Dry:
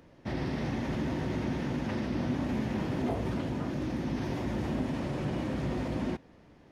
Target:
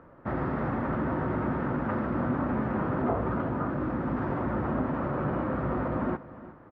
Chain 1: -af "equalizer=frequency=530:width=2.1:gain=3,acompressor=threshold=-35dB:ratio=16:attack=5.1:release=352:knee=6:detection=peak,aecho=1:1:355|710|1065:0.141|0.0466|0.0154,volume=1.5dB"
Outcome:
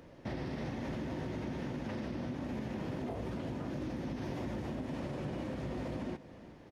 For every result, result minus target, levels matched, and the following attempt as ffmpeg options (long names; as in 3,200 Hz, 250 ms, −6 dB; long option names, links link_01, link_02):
downward compressor: peak gain reduction +12 dB; 1,000 Hz band −5.0 dB
-af "equalizer=frequency=530:width=2.1:gain=3,aecho=1:1:355|710|1065:0.141|0.0466|0.0154,volume=1.5dB"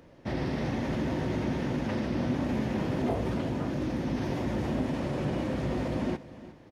1,000 Hz band −5.0 dB
-af "lowpass=frequency=1300:width_type=q:width=4.2,equalizer=frequency=530:width=2.1:gain=3,aecho=1:1:355|710|1065:0.141|0.0466|0.0154,volume=1.5dB"